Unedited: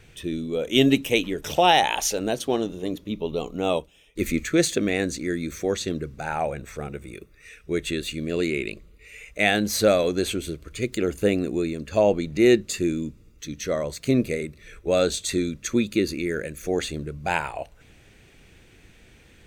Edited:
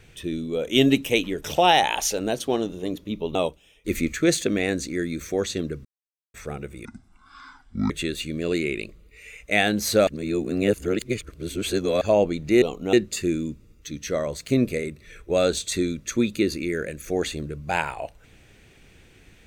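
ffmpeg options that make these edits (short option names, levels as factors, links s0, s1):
-filter_complex "[0:a]asplit=10[s0][s1][s2][s3][s4][s5][s6][s7][s8][s9];[s0]atrim=end=3.352[s10];[s1]atrim=start=3.658:end=6.16,asetpts=PTS-STARTPTS,afade=t=out:st=2.498:d=0.004:c=hsin[s11];[s2]atrim=start=6.16:end=6.65,asetpts=PTS-STARTPTS,volume=0[s12];[s3]atrim=start=6.65:end=7.164,asetpts=PTS-STARTPTS,afade=t=in:d=0.004:c=hsin[s13];[s4]atrim=start=7.16:end=7.78,asetpts=PTS-STARTPTS,asetrate=26019,aresample=44100,atrim=end_sample=46342,asetpts=PTS-STARTPTS[s14];[s5]atrim=start=7.776:end=9.952[s15];[s6]atrim=start=9.948:end=11.892,asetpts=PTS-STARTPTS,areverse[s16];[s7]atrim=start=11.888:end=12.502[s17];[s8]atrim=start=3.348:end=3.662[s18];[s9]atrim=start=12.498[s19];[s11][s12][s13]concat=n=3:v=0:a=1[s20];[s10][s20]acrossfade=d=0.004:c1=hsin:c2=hsin[s21];[s21][s14]acrossfade=d=0.004:c1=hsin:c2=hsin[s22];[s22][s15]acrossfade=d=0.004:c1=hsin:c2=hsin[s23];[s23][s16]acrossfade=d=0.004:c1=hsin:c2=hsin[s24];[s24][s17]acrossfade=d=0.004:c1=hsin:c2=hsin[s25];[s25][s18]acrossfade=d=0.004:c1=hsin:c2=hsin[s26];[s26][s19]acrossfade=d=0.004:c1=hsin:c2=hsin"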